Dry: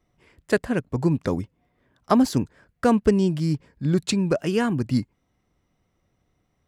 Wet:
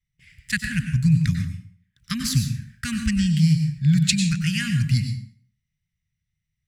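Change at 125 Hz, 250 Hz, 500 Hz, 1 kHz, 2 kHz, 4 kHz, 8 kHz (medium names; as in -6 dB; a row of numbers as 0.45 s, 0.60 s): +7.0 dB, -1.0 dB, under -40 dB, under -15 dB, +4.0 dB, +7.5 dB, +8.0 dB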